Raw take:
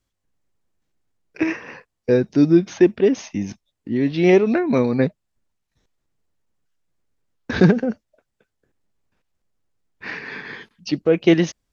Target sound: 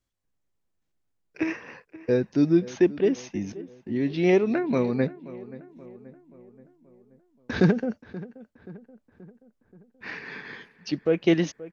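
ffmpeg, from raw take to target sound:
ffmpeg -i in.wav -filter_complex "[0:a]asplit=2[link_01][link_02];[link_02]adelay=529,lowpass=frequency=2000:poles=1,volume=-17.5dB,asplit=2[link_03][link_04];[link_04]adelay=529,lowpass=frequency=2000:poles=1,volume=0.54,asplit=2[link_05][link_06];[link_06]adelay=529,lowpass=frequency=2000:poles=1,volume=0.54,asplit=2[link_07][link_08];[link_08]adelay=529,lowpass=frequency=2000:poles=1,volume=0.54,asplit=2[link_09][link_10];[link_10]adelay=529,lowpass=frequency=2000:poles=1,volume=0.54[link_11];[link_01][link_03][link_05][link_07][link_09][link_11]amix=inputs=6:normalize=0,volume=-6dB" out.wav

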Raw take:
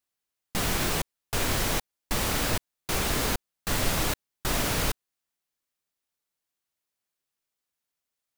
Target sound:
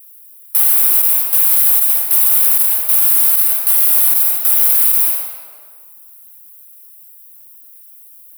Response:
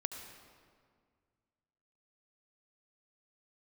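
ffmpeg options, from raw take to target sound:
-filter_complex "[0:a]highpass=frequency=520:width=0.5412,highpass=frequency=520:width=1.3066,bandreject=frequency=1800:width=12,asplit=2[link_01][link_02];[link_02]highpass=frequency=720:poles=1,volume=18dB,asoftclip=type=tanh:threshold=-18dB[link_03];[link_01][link_03]amix=inputs=2:normalize=0,lowpass=frequency=5900:poles=1,volume=-6dB,aexciter=amount=16:drive=5.7:freq=9400,asplit=2[link_04][link_05];[1:a]atrim=start_sample=2205,highshelf=frequency=5100:gain=11.5[link_06];[link_05][link_06]afir=irnorm=-1:irlink=0,volume=-4dB[link_07];[link_04][link_07]amix=inputs=2:normalize=0,alimiter=level_in=6dB:limit=-1dB:release=50:level=0:latency=1,volume=-1dB"

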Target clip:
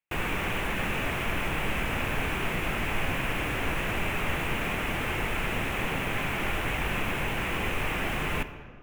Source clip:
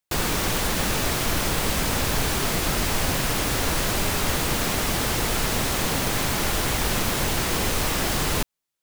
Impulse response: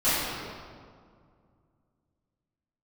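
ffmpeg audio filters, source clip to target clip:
-filter_complex "[0:a]highshelf=frequency=3400:width_type=q:width=3:gain=-10,asplit=2[link_01][link_02];[1:a]atrim=start_sample=2205,asetrate=52920,aresample=44100[link_03];[link_02][link_03]afir=irnorm=-1:irlink=0,volume=-24.5dB[link_04];[link_01][link_04]amix=inputs=2:normalize=0,volume=-6.5dB"

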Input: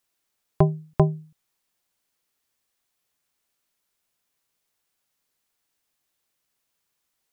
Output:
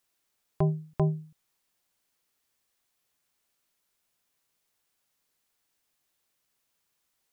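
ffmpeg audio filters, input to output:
ffmpeg -i in.wav -af "alimiter=limit=-14.5dB:level=0:latency=1:release=76" out.wav

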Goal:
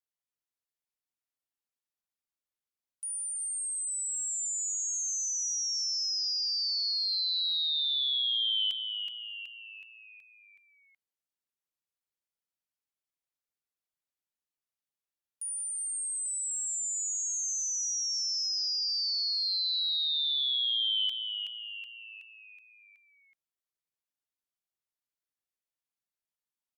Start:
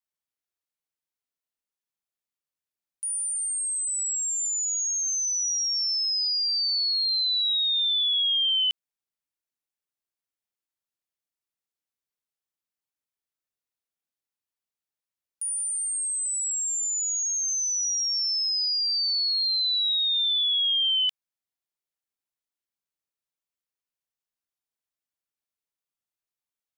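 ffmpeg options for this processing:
ffmpeg -i in.wav -filter_complex "[0:a]asplit=7[link_01][link_02][link_03][link_04][link_05][link_06][link_07];[link_02]adelay=373,afreqshift=-140,volume=-7dB[link_08];[link_03]adelay=746,afreqshift=-280,volume=-12.7dB[link_09];[link_04]adelay=1119,afreqshift=-420,volume=-18.4dB[link_10];[link_05]adelay=1492,afreqshift=-560,volume=-24dB[link_11];[link_06]adelay=1865,afreqshift=-700,volume=-29.7dB[link_12];[link_07]adelay=2238,afreqshift=-840,volume=-35.4dB[link_13];[link_01][link_08][link_09][link_10][link_11][link_12][link_13]amix=inputs=7:normalize=0,volume=-6.5dB" -ar 48000 -c:a libopus -b:a 256k out.opus

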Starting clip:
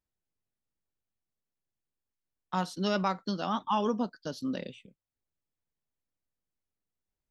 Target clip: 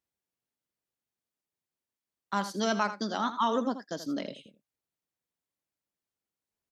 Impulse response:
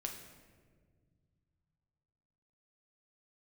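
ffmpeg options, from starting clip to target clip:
-af "highpass=frequency=180:poles=1,aecho=1:1:88:0.251,asetrate=48000,aresample=44100,volume=1.5dB"

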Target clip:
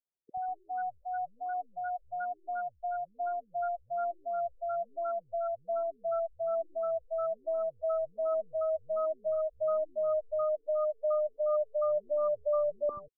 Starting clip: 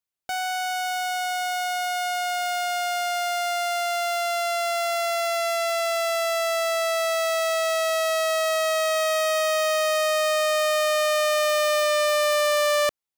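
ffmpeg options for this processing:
ffmpeg -i in.wav -filter_complex "[0:a]asplit=3[link_01][link_02][link_03];[link_01]afade=type=out:start_time=10.24:duration=0.02[link_04];[link_02]lowpass=frequency=3700:poles=1,afade=type=in:start_time=10.24:duration=0.02,afade=type=out:start_time=11.59:duration=0.02[link_05];[link_03]afade=type=in:start_time=11.59:duration=0.02[link_06];[link_04][link_05][link_06]amix=inputs=3:normalize=0,acrossover=split=200|1100[link_07][link_08][link_09];[link_07]adelay=80[link_10];[link_09]adelay=190[link_11];[link_10][link_08][link_11]amix=inputs=3:normalize=0,aexciter=amount=6.4:drive=9.9:freq=2100,asplit=2[link_12][link_13];[link_13]asoftclip=type=tanh:threshold=-4.5dB,volume=-6dB[link_14];[link_12][link_14]amix=inputs=2:normalize=0,afftfilt=real='re*lt(b*sr/1024,430*pow(1500/430,0.5+0.5*sin(2*PI*2.8*pts/sr)))':imag='im*lt(b*sr/1024,430*pow(1500/430,0.5+0.5*sin(2*PI*2.8*pts/sr)))':win_size=1024:overlap=0.75,volume=-7dB" out.wav

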